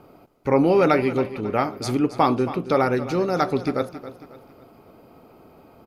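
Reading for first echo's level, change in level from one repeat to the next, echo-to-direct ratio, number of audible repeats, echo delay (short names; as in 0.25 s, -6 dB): -14.0 dB, -8.0 dB, -13.0 dB, 3, 0.273 s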